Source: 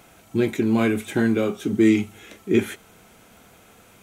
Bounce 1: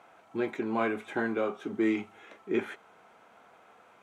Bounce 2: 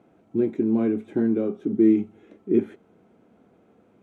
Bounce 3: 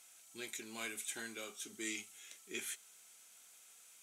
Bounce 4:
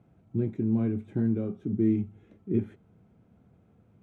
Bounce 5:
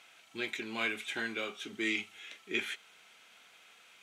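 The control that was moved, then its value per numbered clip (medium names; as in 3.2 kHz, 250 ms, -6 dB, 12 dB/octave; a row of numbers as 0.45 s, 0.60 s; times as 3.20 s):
band-pass filter, frequency: 960 Hz, 300 Hz, 8 kHz, 120 Hz, 3 kHz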